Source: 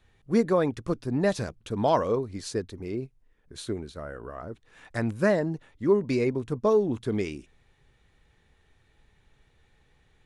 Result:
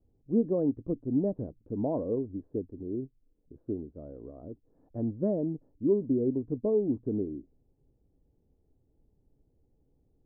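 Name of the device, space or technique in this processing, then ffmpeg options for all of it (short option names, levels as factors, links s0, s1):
under water: -af "lowpass=f=610:w=0.5412,lowpass=f=610:w=1.3066,equalizer=f=280:t=o:w=0.45:g=9,volume=0.531"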